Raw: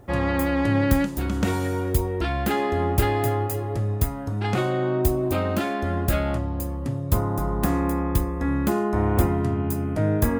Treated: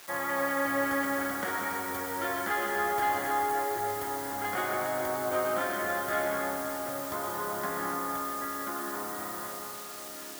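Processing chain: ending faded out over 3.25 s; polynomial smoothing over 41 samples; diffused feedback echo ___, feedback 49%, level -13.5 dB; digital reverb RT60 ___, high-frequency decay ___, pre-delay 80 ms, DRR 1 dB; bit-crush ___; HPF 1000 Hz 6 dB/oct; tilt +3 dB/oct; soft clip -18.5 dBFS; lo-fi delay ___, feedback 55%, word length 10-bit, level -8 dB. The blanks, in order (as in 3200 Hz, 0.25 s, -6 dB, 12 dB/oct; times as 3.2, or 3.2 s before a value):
1.598 s, 1.3 s, 0.7×, 8-bit, 0.282 s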